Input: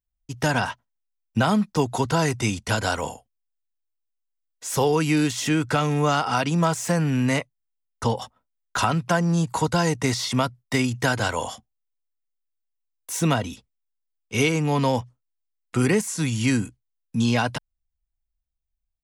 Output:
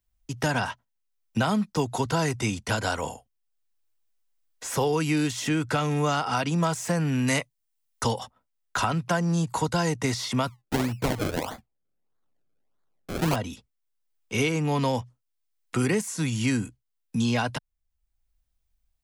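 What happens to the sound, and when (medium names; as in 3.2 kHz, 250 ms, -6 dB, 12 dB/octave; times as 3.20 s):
7.27–8.19 s: treble shelf 2.9 kHz +11.5 dB
10.47–13.36 s: decimation with a swept rate 32× 1.6 Hz
whole clip: three bands compressed up and down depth 40%; trim -3.5 dB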